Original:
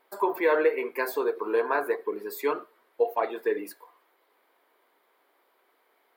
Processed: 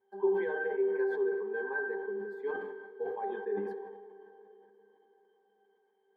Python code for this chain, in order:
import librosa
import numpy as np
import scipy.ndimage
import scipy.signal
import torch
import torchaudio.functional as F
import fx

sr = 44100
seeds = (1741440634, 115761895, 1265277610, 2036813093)

y = fx.high_shelf(x, sr, hz=5100.0, db=-5.5)
y = fx.hum_notches(y, sr, base_hz=50, count=2)
y = fx.octave_resonator(y, sr, note='G', decay_s=0.23)
y = fx.rev_plate(y, sr, seeds[0], rt60_s=4.5, hf_ratio=0.75, predelay_ms=0, drr_db=10.5)
y = fx.sustainer(y, sr, db_per_s=42.0)
y = y * 10.0 ** (6.5 / 20.0)